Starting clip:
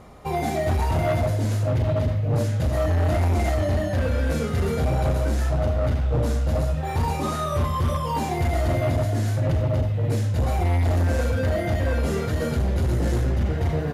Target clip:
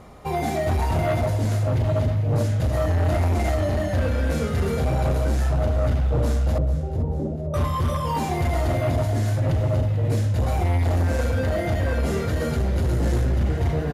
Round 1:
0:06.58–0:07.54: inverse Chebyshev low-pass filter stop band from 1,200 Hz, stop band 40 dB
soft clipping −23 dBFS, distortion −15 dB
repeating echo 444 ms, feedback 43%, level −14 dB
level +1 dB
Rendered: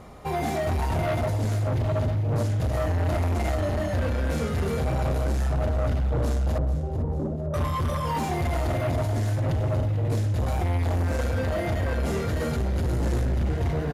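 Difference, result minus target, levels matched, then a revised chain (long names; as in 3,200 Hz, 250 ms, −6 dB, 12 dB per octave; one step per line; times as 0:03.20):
soft clipping: distortion +12 dB
0:06.58–0:07.54: inverse Chebyshev low-pass filter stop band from 1,200 Hz, stop band 40 dB
soft clipping −15 dBFS, distortion −27 dB
repeating echo 444 ms, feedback 43%, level −14 dB
level +1 dB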